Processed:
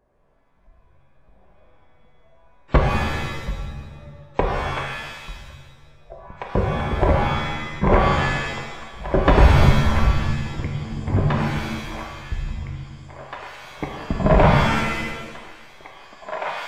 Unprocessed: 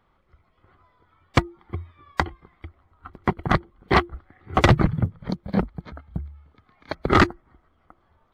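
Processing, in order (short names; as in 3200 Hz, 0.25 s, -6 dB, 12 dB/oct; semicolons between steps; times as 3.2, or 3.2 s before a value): thin delay 1.012 s, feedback 44%, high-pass 1700 Hz, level -6 dB; speed mistake 15 ips tape played at 7.5 ips; shimmer reverb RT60 1.2 s, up +7 st, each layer -2 dB, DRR 1 dB; gain -1 dB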